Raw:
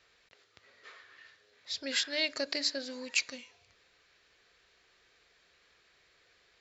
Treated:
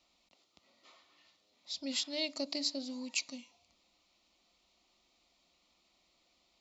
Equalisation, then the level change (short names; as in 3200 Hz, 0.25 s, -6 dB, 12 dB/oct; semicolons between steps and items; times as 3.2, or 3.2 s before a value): bell 210 Hz +6 dB 1.6 oct; fixed phaser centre 440 Hz, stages 6; -2.0 dB